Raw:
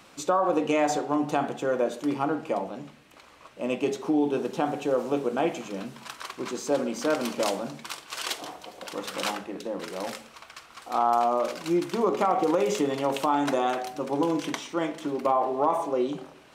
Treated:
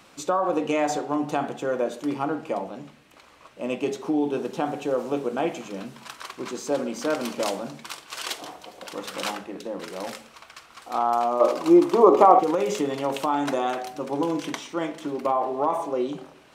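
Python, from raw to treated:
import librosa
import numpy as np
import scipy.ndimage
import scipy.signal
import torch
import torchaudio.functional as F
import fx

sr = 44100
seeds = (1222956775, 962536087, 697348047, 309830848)

y = fx.spec_box(x, sr, start_s=11.41, length_s=0.98, low_hz=250.0, high_hz=1300.0, gain_db=10)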